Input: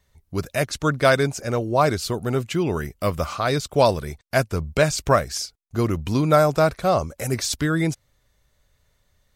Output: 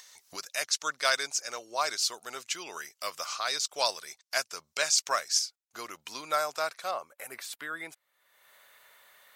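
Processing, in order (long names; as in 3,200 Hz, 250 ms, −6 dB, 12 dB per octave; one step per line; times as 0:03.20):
high-pass filter 1,000 Hz 12 dB per octave
parametric band 5,800 Hz +11.5 dB 1.2 octaves, from 0:05.39 +4.5 dB, from 0:06.91 −13 dB
upward compression, threshold −32 dBFS
level −6.5 dB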